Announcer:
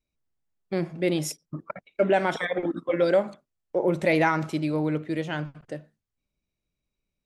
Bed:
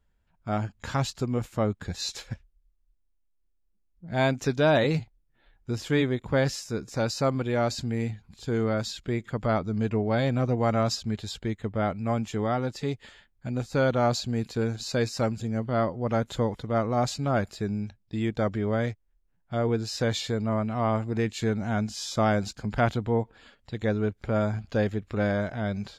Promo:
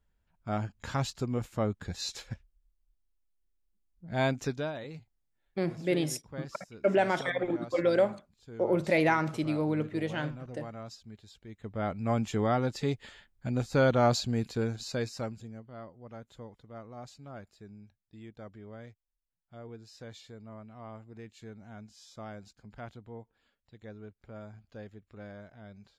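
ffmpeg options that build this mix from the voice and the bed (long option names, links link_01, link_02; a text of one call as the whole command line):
ffmpeg -i stem1.wav -i stem2.wav -filter_complex "[0:a]adelay=4850,volume=-3.5dB[link_01];[1:a]volume=14dB,afade=type=out:start_time=4.39:duration=0.34:silence=0.188365,afade=type=in:start_time=11.47:duration=0.76:silence=0.125893,afade=type=out:start_time=14.13:duration=1.52:silence=0.105925[link_02];[link_01][link_02]amix=inputs=2:normalize=0" out.wav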